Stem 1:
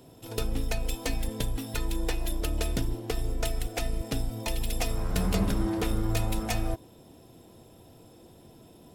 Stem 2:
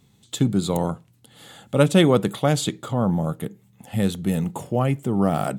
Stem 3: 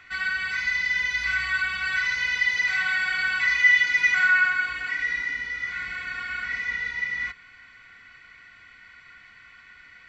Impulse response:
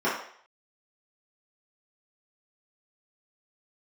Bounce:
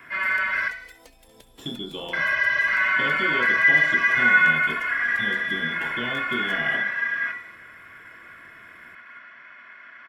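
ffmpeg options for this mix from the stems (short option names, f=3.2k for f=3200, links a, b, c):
-filter_complex "[0:a]acompressor=threshold=-31dB:ratio=6,acrossover=split=390|3500[a][b][c];[a]acompressor=threshold=-53dB:ratio=4[d];[b]acompressor=threshold=-45dB:ratio=4[e];[c]acompressor=threshold=-49dB:ratio=4[f];[d][e][f]amix=inputs=3:normalize=0,volume=-6dB,asplit=2[g][h];[h]volume=-14dB[i];[1:a]acompressor=threshold=-23dB:ratio=6,adelay=1250,volume=-11dB,asplit=2[j][k];[k]volume=-9.5dB[l];[2:a]highpass=f=160:w=0.5412,highpass=f=160:w=1.3066,volume=2dB,asplit=3[m][n][o];[m]atrim=end=0.68,asetpts=PTS-STARTPTS,afade=t=out:st=0.676:d=0.004:c=hsin[p];[n]atrim=start=0.68:end=2.13,asetpts=PTS-STARTPTS,volume=0[q];[o]atrim=start=2.13,asetpts=PTS-STARTPTS,afade=t=in:d=0.004:c=hsin[r];[p][q][r]concat=n=3:v=0:a=1,asplit=3[s][t][u];[t]volume=-15.5dB[v];[u]volume=-22dB[w];[j][s]amix=inputs=2:normalize=0,lowpass=f=3.1k:t=q:w=0.5098,lowpass=f=3.1k:t=q:w=0.6013,lowpass=f=3.1k:t=q:w=0.9,lowpass=f=3.1k:t=q:w=2.563,afreqshift=-3600,alimiter=limit=-17dB:level=0:latency=1,volume=0dB[x];[3:a]atrim=start_sample=2205[y];[l][v]amix=inputs=2:normalize=0[z];[z][y]afir=irnorm=-1:irlink=0[aa];[i][w]amix=inputs=2:normalize=0,aecho=0:1:238:1[ab];[g][x][aa][ab]amix=inputs=4:normalize=0"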